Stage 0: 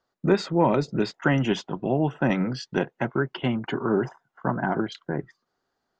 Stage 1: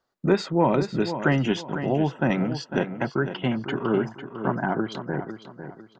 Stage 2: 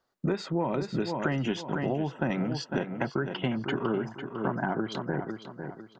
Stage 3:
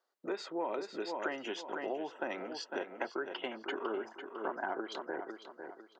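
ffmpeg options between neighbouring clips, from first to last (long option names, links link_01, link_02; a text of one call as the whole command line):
ffmpeg -i in.wav -filter_complex "[0:a]asplit=2[link_01][link_02];[link_02]adelay=501,lowpass=frequency=4900:poles=1,volume=-10dB,asplit=2[link_03][link_04];[link_04]adelay=501,lowpass=frequency=4900:poles=1,volume=0.33,asplit=2[link_05][link_06];[link_06]adelay=501,lowpass=frequency=4900:poles=1,volume=0.33,asplit=2[link_07][link_08];[link_08]adelay=501,lowpass=frequency=4900:poles=1,volume=0.33[link_09];[link_01][link_03][link_05][link_07][link_09]amix=inputs=5:normalize=0" out.wav
ffmpeg -i in.wav -af "acompressor=threshold=-25dB:ratio=6" out.wav
ffmpeg -i in.wav -af "highpass=frequency=350:width=0.5412,highpass=frequency=350:width=1.3066,volume=-5dB" out.wav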